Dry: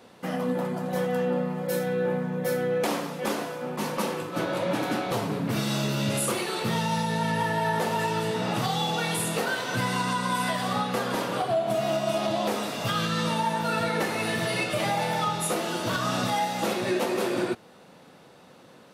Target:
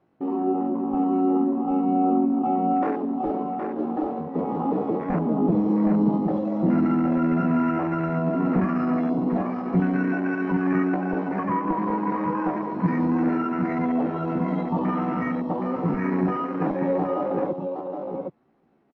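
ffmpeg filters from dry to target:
ffmpeg -i in.wav -af "lowpass=2100,aemphasis=mode=reproduction:type=riaa,afwtdn=0.0708,lowshelf=frequency=420:gain=3.5,asetrate=66075,aresample=44100,atempo=0.66742,aecho=1:1:767:0.531,volume=-4.5dB" out.wav

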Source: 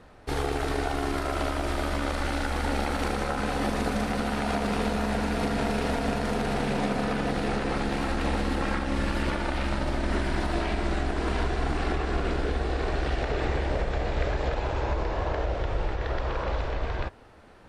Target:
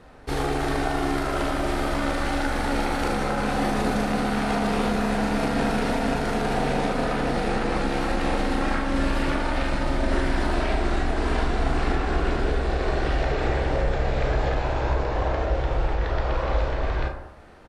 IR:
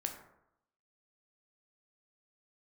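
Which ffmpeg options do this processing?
-filter_complex "[0:a]asplit=2[link_01][link_02];[link_02]adelay=37,volume=-11dB[link_03];[link_01][link_03]amix=inputs=2:normalize=0[link_04];[1:a]atrim=start_sample=2205,asetrate=42777,aresample=44100[link_05];[link_04][link_05]afir=irnorm=-1:irlink=0,volume=2.5dB"

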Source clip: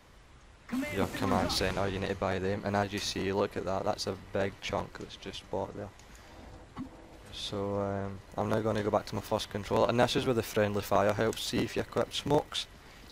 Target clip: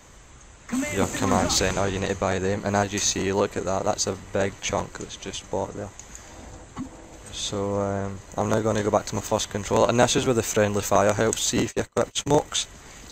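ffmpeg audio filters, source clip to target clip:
ffmpeg -i in.wav -filter_complex "[0:a]asplit=3[link_01][link_02][link_03];[link_01]afade=type=out:start_time=11.56:duration=0.02[link_04];[link_02]agate=range=-27dB:threshold=-34dB:ratio=16:detection=peak,afade=type=in:start_time=11.56:duration=0.02,afade=type=out:start_time=12.43:duration=0.02[link_05];[link_03]afade=type=in:start_time=12.43:duration=0.02[link_06];[link_04][link_05][link_06]amix=inputs=3:normalize=0,superequalizer=15b=3.98:16b=0.447,volume=7dB" out.wav

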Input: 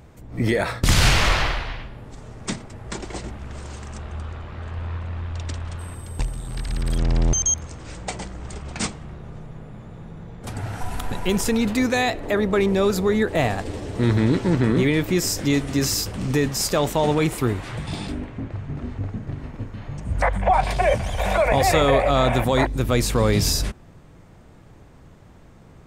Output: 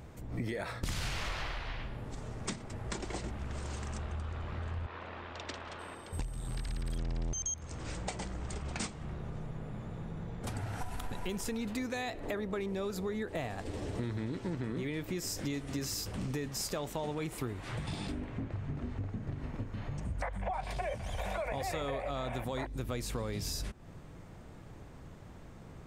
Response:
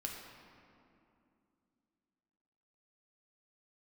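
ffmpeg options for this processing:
-filter_complex "[0:a]asettb=1/sr,asplit=3[link_01][link_02][link_03];[link_01]atrim=end=4.864[link_04];[link_02]atrim=start=4.86:end=6.13,asetpts=PTS-STARTPTS,afade=type=in:duration=0.004:curve=qsin,afade=type=out:start_time=1.266:duration=0.004:curve=qsin,acrossover=split=260 5600:gain=0.0891 1 0.158[link_05][link_06][link_07];[link_05][link_06][link_07]amix=inputs=3:normalize=0[link_08];[link_03]atrim=start=6.126[link_09];[link_04][link_08]acrossfade=duration=0.004:curve1=hsin:curve2=qsin[link_10];[link_10][link_09]acrossfade=duration=0.004:curve1=qsin:curve2=hsin,acompressor=threshold=-32dB:ratio=6,volume=-2.5dB"

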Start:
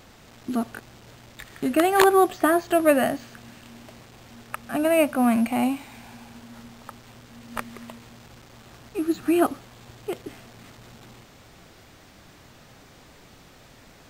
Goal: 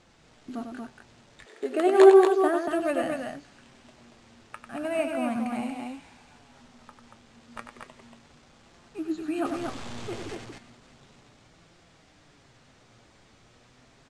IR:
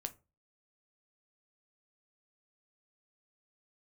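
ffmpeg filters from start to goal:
-filter_complex "[0:a]asettb=1/sr,asplit=3[link_01][link_02][link_03];[link_01]atrim=end=9.454[link_04];[link_02]atrim=start=9.45:end=10.35,asetpts=PTS-STARTPTS,afade=type=in:duration=0.004:curve=qsin,afade=type=out:start_time=0.896:duration=0.004:curve=qsin,aeval=exprs='val(0)+0.5*0.0447*sgn(val(0))':channel_layout=same[link_05];[link_03]atrim=start=10.346[link_06];[link_04][link_05]acrossfade=duration=0.004:curve1=hsin:curve2=qsin[link_07];[link_07][link_06]acrossfade=duration=0.004:curve1=qsin:curve2=hsin,lowpass=frequency=8800:width=0.5412,lowpass=frequency=8800:width=1.3066,aecho=1:1:96.21|233.2:0.447|0.631,flanger=delay=5.7:depth=3.5:regen=67:speed=0.34:shape=triangular,asettb=1/sr,asplit=3[link_08][link_09][link_10];[link_08]atrim=end=1.464[link_11];[link_09]atrim=start=1.46:end=2.68,asetpts=PTS-STARTPTS,afade=type=in:duration=0.004:curve=qsin,afade=type=out:start_time=1.216:duration=0.004:curve=qsin,highpass=frequency=420:width_type=q:width=4.9[link_12];[link_10]atrim=start=2.676[link_13];[link_11][link_12]acrossfade=duration=0.004:curve1=hsin:curve2=qsin[link_14];[link_14][link_13]acrossfade=duration=0.004:curve1=qsin:curve2=hsin,volume=-5dB"

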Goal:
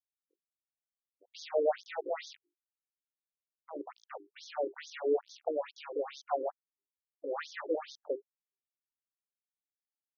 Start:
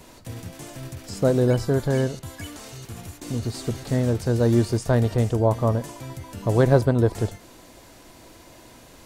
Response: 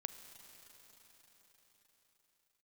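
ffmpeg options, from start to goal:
-filter_complex "[0:a]equalizer=frequency=250:width_type=o:width=0.67:gain=-11,equalizer=frequency=2500:width_type=o:width=0.67:gain=-10,equalizer=frequency=6300:width_type=o:width=0.67:gain=4,asplit=4[link_01][link_02][link_03][link_04];[link_02]adelay=141,afreqshift=-95,volume=-23dB[link_05];[link_03]adelay=282,afreqshift=-190,volume=-29.6dB[link_06];[link_04]adelay=423,afreqshift=-285,volume=-36.1dB[link_07];[link_01][link_05][link_06][link_07]amix=inputs=4:normalize=0,asetrate=39249,aresample=44100,aeval=exprs='val(0)*gte(abs(val(0)),0.0562)':channel_layout=same,asetrate=60591,aresample=44100,atempo=0.727827,lowshelf=frequency=400:gain=11,bandreject=frequency=50:width_type=h:width=6,bandreject=frequency=100:width_type=h:width=6,bandreject=frequency=150:width_type=h:width=6,bandreject=frequency=200:width_type=h:width=6,bandreject=frequency=250:width_type=h:width=6,bandreject=frequency=300:width_type=h:width=6,bandreject=frequency=350:width_type=h:width=6,bandreject=frequency=400:width_type=h:width=6,afftfilt=real='re*between(b*sr/1024,370*pow(4800/370,0.5+0.5*sin(2*PI*2.3*pts/sr))/1.41,370*pow(4800/370,0.5+0.5*sin(2*PI*2.3*pts/sr))*1.41)':imag='im*between(b*sr/1024,370*pow(4800/370,0.5+0.5*sin(2*PI*2.3*pts/sr))/1.41,370*pow(4800/370,0.5+0.5*sin(2*PI*2.3*pts/sr))*1.41)':win_size=1024:overlap=0.75,volume=-6dB"

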